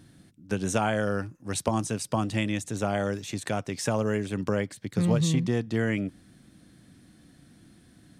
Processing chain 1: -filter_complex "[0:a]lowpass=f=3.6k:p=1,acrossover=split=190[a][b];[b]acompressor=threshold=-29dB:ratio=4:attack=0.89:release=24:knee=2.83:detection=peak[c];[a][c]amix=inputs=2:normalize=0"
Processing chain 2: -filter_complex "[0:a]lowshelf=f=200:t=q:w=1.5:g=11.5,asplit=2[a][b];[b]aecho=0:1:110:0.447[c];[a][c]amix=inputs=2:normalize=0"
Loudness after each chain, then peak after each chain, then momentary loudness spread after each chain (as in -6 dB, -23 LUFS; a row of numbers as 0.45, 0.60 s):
-31.0, -19.5 LUFS; -16.0, -3.0 dBFS; 8, 10 LU